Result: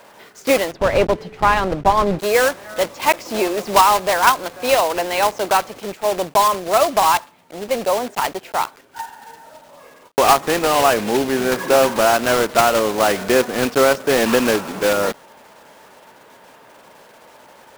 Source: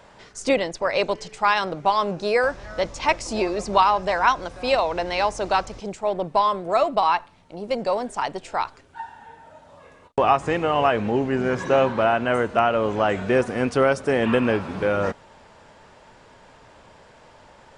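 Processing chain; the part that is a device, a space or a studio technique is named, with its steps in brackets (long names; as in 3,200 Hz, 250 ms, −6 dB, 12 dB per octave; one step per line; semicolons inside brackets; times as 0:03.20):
early digital voice recorder (band-pass filter 220–3,800 Hz; one scale factor per block 3 bits)
0:00.72–0:02.19: RIAA equalisation playback
level +4.5 dB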